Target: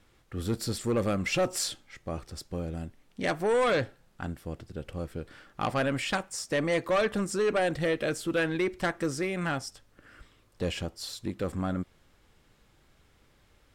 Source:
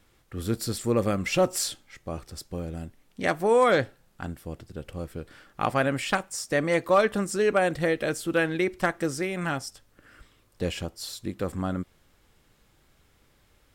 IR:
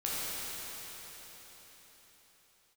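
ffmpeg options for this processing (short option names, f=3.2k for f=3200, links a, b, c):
-filter_complex "[0:a]acrossover=split=3300[a][b];[a]asoftclip=type=tanh:threshold=-21dB[c];[c][b]amix=inputs=2:normalize=0,highshelf=f=10k:g=-9"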